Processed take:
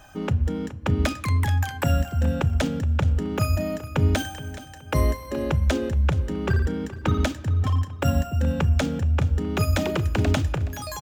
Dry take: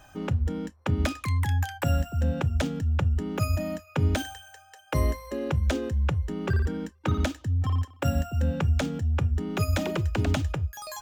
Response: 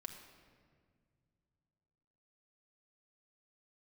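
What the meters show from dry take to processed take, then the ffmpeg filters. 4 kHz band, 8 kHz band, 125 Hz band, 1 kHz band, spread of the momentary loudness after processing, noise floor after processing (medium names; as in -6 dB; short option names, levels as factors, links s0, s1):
+4.0 dB, +3.5 dB, +3.5 dB, +4.0 dB, 5 LU, -39 dBFS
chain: -filter_complex "[0:a]aecho=1:1:422|844|1266:0.168|0.0537|0.0172,asplit=2[s0][s1];[1:a]atrim=start_sample=2205[s2];[s1][s2]afir=irnorm=-1:irlink=0,volume=0.398[s3];[s0][s3]amix=inputs=2:normalize=0,volume=1.26"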